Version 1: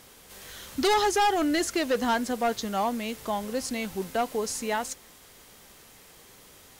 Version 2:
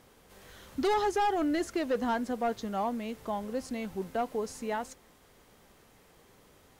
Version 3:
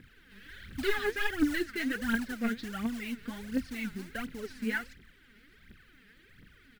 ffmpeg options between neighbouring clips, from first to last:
-af "highshelf=f=2.1k:g=-11,volume=-3dB"
-af "firequalizer=gain_entry='entry(250,0);entry(630,-21);entry(1000,-20);entry(1500,5);entry(4500,-5);entry(6600,-21);entry(13000,-16)':delay=0.05:min_phase=1,acrusher=bits=4:mode=log:mix=0:aa=0.000001,aphaser=in_gain=1:out_gain=1:delay=5:decay=0.73:speed=1.4:type=triangular"

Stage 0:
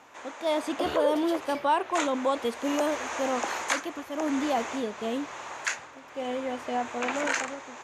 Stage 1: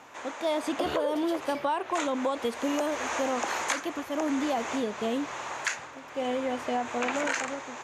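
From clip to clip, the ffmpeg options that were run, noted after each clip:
-af "equalizer=f=140:t=o:w=0.77:g=2.5,acompressor=threshold=-28dB:ratio=6,volume=3dB"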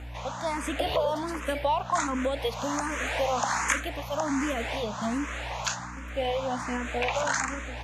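-filter_complex "[0:a]equalizer=f=360:w=2.4:g=-11.5,aeval=exprs='val(0)+0.00794*(sin(2*PI*60*n/s)+sin(2*PI*2*60*n/s)/2+sin(2*PI*3*60*n/s)/3+sin(2*PI*4*60*n/s)/4+sin(2*PI*5*60*n/s)/5)':c=same,asplit=2[a][b];[b]afreqshift=1.3[c];[a][c]amix=inputs=2:normalize=1,volume=5.5dB"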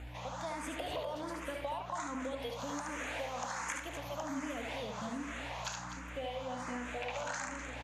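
-filter_complex "[0:a]acompressor=threshold=-34dB:ratio=3,asplit=2[a][b];[b]aecho=0:1:72.89|250.7:0.562|0.282[c];[a][c]amix=inputs=2:normalize=0,volume=-5.5dB"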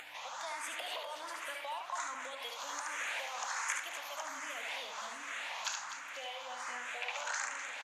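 -af "highpass=1.1k,acompressor=mode=upward:threshold=-49dB:ratio=2.5,aecho=1:1:486:0.158,volume=4dB"

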